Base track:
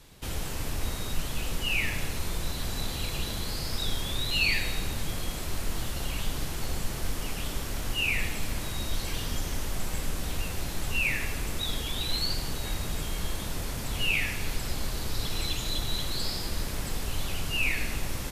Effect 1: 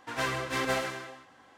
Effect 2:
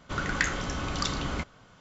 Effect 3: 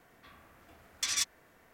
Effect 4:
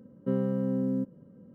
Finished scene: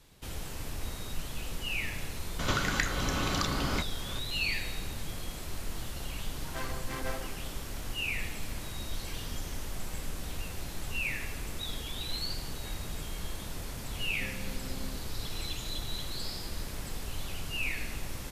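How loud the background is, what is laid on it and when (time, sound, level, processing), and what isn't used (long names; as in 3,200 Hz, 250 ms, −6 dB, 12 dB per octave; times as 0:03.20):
base track −6 dB
0:02.39: mix in 2 −1 dB + multiband upward and downward compressor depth 100%
0:06.37: mix in 1 −8.5 dB + adaptive Wiener filter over 15 samples
0:13.93: mix in 4 −16.5 dB
not used: 3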